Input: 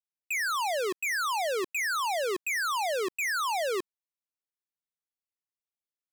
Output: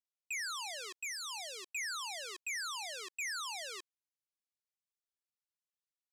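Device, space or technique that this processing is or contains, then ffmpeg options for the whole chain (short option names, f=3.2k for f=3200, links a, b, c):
piezo pickup straight into a mixer: -filter_complex "[0:a]asettb=1/sr,asplit=3[a][b][c];[a]atrim=end=0.944[d];[b]atrim=start=0.94:end=1.74,asetpts=PTS-STARTPTS,afade=t=in:d=0.004:c=qsin,afade=t=out:st=0.796:d=0.004:c=qsin,equalizer=f=1.5k:t=o:w=0.57:g=-12.5[e];[c]atrim=start=1.736[f];[d][e]acrossfade=d=0.004:c1=hsin:c2=qsin[g];[g][f]acrossfade=d=0.004:c1=qsin:c2=hsin,lowpass=6k,aderivative,volume=1dB"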